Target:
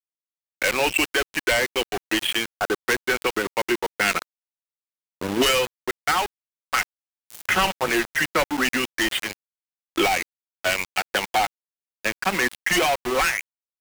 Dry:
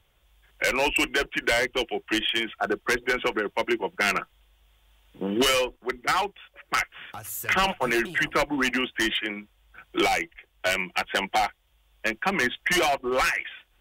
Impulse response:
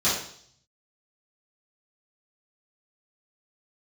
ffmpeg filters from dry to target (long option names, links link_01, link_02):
-af "aeval=exprs='val(0)*gte(abs(val(0)),0.0501)':channel_layout=same,volume=2.5dB"